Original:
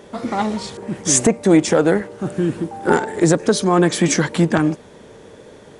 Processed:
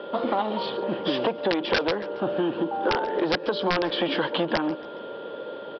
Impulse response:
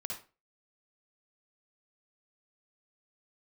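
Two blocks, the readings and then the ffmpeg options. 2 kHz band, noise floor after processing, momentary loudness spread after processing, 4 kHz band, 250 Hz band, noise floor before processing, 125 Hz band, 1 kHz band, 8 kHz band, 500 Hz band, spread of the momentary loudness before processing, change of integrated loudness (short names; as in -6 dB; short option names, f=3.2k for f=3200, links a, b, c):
-4.5 dB, -38 dBFS, 11 LU, -1.0 dB, -11.0 dB, -43 dBFS, -16.5 dB, -4.0 dB, under -30 dB, -6.5 dB, 10 LU, -8.5 dB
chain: -filter_complex "[0:a]acrossover=split=610[a][b];[a]asoftclip=type=tanh:threshold=-20dB[c];[c][b]amix=inputs=2:normalize=0,aeval=exprs='val(0)+0.00562*sin(2*PI*1400*n/s)':c=same,highpass=250,equalizer=f=330:t=q:w=4:g=4,equalizer=f=550:t=q:w=4:g=10,equalizer=f=960:t=q:w=4:g=5,equalizer=f=2.1k:t=q:w=4:g=-9,equalizer=f=3.1k:t=q:w=4:g=9,lowpass=f=3.8k:w=0.5412,lowpass=f=3.8k:w=1.3066,aresample=11025,aeval=exprs='(mod(2.11*val(0)+1,2)-1)/2.11':c=same,aresample=44100,acompressor=threshold=-23dB:ratio=6,aecho=1:1:138|276|414:0.112|0.0471|0.0198,volume=1.5dB"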